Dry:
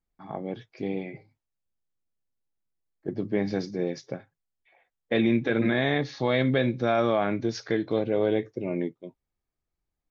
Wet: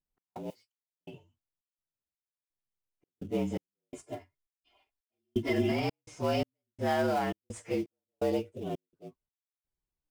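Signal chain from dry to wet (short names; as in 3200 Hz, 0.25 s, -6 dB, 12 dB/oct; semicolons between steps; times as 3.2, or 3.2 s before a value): inharmonic rescaling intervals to 113%; step gate "x.xx..xx" 84 bpm -60 dB; in parallel at -11.5 dB: sample-rate reducer 3100 Hz, jitter 20%; 0.5–1.01 on the sum: differentiator; 3.92–5.72 comb 2.9 ms, depth 97%; gain -5 dB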